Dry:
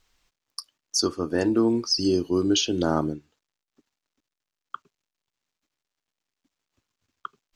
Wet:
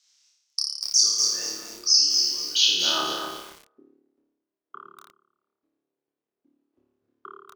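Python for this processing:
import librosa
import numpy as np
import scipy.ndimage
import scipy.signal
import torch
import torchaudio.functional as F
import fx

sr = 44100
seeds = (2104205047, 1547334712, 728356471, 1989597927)

p1 = fx.over_compress(x, sr, threshold_db=-26.0, ratio=-0.5)
p2 = x + F.gain(torch.from_numpy(p1), -0.5).numpy()
p3 = fx.filter_sweep_bandpass(p2, sr, from_hz=5700.0, to_hz=370.0, start_s=2.45, end_s=3.66, q=2.7)
p4 = fx.room_flutter(p3, sr, wall_m=4.8, rt60_s=0.94)
p5 = fx.echo_crushed(p4, sr, ms=242, feedback_pct=35, bits=7, wet_db=-4)
y = F.gain(torch.from_numpy(p5), 2.0).numpy()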